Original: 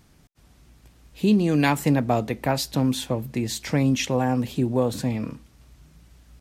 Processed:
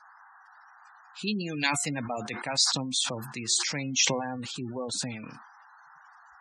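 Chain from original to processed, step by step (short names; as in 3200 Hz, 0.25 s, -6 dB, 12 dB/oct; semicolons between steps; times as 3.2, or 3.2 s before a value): weighting filter ITU-R 468; band noise 770–1700 Hz -47 dBFS; spectral gate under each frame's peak -15 dB strong; tone controls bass +12 dB, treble +3 dB; de-hum 355.6 Hz, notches 6; sustainer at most 53 dB/s; gain -7.5 dB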